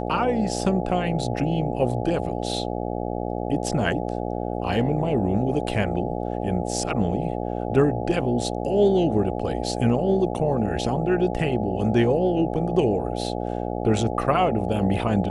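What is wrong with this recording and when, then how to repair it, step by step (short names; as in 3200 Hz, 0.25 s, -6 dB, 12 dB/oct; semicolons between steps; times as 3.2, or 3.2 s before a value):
buzz 60 Hz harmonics 14 -28 dBFS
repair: de-hum 60 Hz, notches 14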